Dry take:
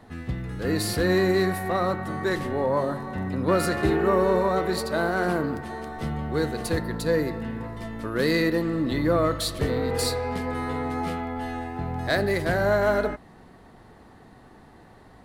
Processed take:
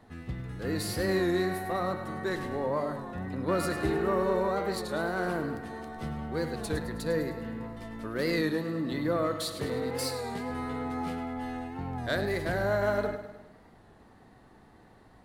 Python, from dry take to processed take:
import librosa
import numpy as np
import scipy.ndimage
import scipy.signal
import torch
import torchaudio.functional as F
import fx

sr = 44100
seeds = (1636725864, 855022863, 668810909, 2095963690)

y = fx.highpass(x, sr, hz=120.0, slope=12, at=(8.42, 10.5))
y = fx.echo_feedback(y, sr, ms=103, feedback_pct=52, wet_db=-11)
y = fx.record_warp(y, sr, rpm=33.33, depth_cents=100.0)
y = y * librosa.db_to_amplitude(-6.5)